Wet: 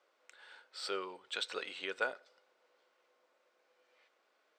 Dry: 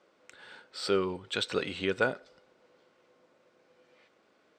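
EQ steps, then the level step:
high-pass filter 580 Hz 12 dB per octave
−5.5 dB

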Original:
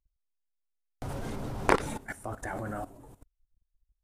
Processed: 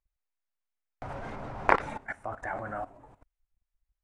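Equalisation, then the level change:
high-frequency loss of the air 110 metres
flat-topped bell 1,200 Hz +9 dB 2.4 octaves
high-shelf EQ 8,700 Hz +5.5 dB
−5.5 dB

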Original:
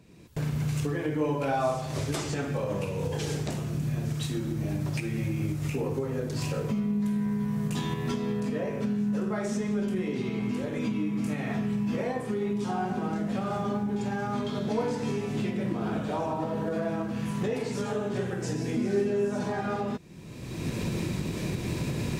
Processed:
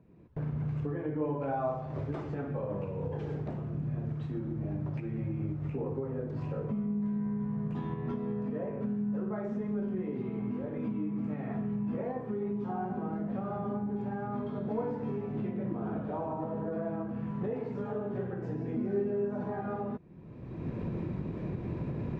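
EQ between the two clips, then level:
low-pass filter 1,200 Hz 12 dB per octave
−4.5 dB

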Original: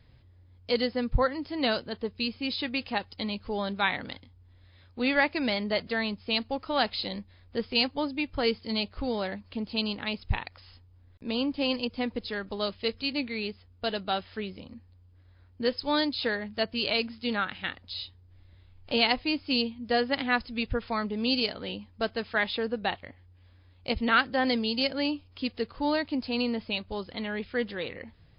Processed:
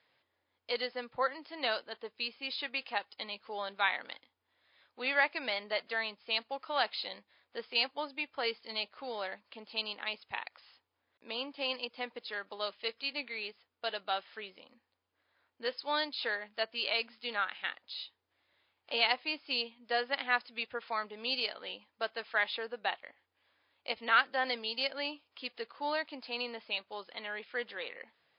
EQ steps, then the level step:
band-pass filter 660–4,200 Hz
−2.5 dB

